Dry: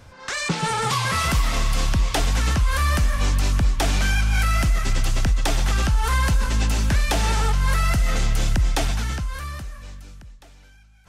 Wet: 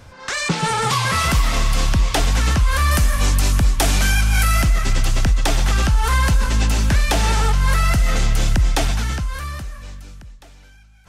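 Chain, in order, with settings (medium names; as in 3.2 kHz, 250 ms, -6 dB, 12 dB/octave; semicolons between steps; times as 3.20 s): 2.91–4.62 s: peaking EQ 12 kHz +8.5 dB 1.2 oct; trim +3.5 dB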